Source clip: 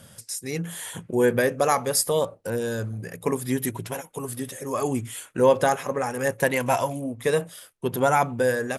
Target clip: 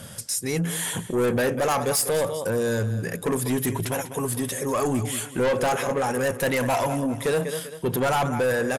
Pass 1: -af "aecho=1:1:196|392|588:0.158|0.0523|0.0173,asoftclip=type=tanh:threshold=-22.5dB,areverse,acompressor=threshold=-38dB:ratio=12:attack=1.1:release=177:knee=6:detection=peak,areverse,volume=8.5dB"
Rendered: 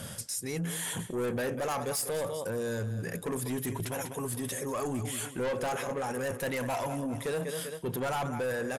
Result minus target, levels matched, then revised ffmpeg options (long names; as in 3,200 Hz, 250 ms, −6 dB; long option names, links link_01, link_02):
downward compressor: peak gain reduction +9.5 dB
-af "aecho=1:1:196|392|588:0.158|0.0523|0.0173,asoftclip=type=tanh:threshold=-22.5dB,areverse,acompressor=threshold=-27.5dB:ratio=12:attack=1.1:release=177:knee=6:detection=peak,areverse,volume=8.5dB"